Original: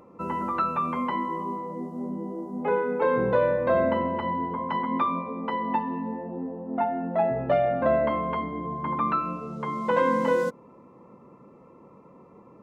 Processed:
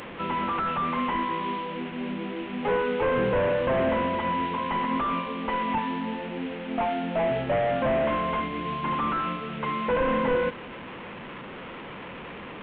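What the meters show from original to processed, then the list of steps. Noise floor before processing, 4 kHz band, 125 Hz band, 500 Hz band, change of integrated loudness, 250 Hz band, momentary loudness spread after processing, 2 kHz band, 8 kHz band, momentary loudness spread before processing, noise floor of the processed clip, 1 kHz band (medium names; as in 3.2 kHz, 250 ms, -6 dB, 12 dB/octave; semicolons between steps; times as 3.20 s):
-52 dBFS, +9.0 dB, +1.0 dB, -1.0 dB, -0.5 dB, 0.0 dB, 15 LU, +3.0 dB, no reading, 10 LU, -40 dBFS, -0.5 dB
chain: one-bit delta coder 16 kbps, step -35 dBFS; treble shelf 2.1 kHz +10 dB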